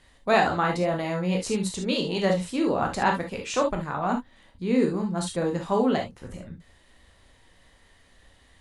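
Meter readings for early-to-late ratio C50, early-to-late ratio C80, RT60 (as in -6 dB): 8.5 dB, 25.5 dB, no single decay rate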